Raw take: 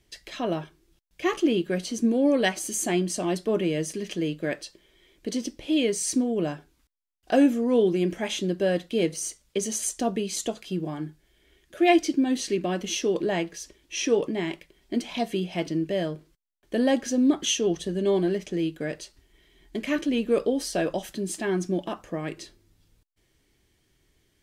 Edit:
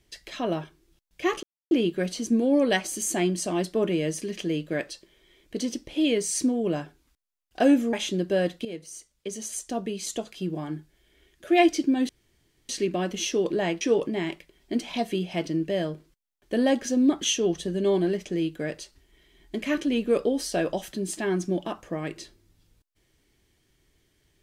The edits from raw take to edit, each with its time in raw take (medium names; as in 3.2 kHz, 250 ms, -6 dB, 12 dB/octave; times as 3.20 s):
1.43 s: insert silence 0.28 s
7.65–8.23 s: delete
8.95–11.03 s: fade in, from -14 dB
12.39 s: insert room tone 0.60 s
13.51–14.02 s: delete